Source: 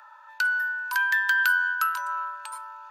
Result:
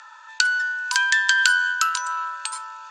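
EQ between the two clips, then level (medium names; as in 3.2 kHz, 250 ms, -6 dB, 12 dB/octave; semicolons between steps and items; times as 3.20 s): elliptic low-pass 7.4 kHz, stop band 70 dB; tilt EQ +6 dB/octave; dynamic bell 1.7 kHz, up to -4 dB, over -31 dBFS, Q 1.6; +3.5 dB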